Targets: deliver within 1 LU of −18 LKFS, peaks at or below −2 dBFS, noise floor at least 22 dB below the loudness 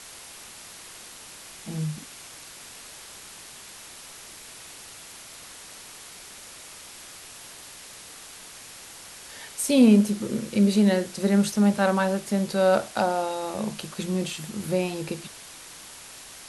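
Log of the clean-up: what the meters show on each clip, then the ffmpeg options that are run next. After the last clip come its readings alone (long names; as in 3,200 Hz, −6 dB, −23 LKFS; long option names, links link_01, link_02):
background noise floor −45 dBFS; target noise floor −46 dBFS; integrated loudness −24.0 LKFS; sample peak −6.5 dBFS; target loudness −18.0 LKFS
→ -af "afftdn=noise_reduction=6:noise_floor=-45"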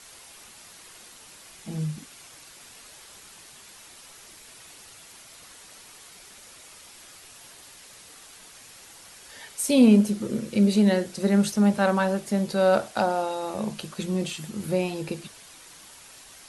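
background noise floor −49 dBFS; integrated loudness −24.0 LKFS; sample peak −6.5 dBFS; target loudness −18.0 LKFS
→ -af "volume=6dB,alimiter=limit=-2dB:level=0:latency=1"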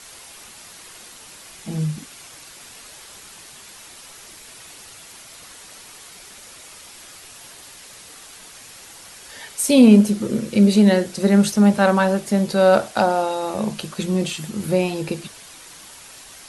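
integrated loudness −18.0 LKFS; sample peak −2.0 dBFS; background noise floor −43 dBFS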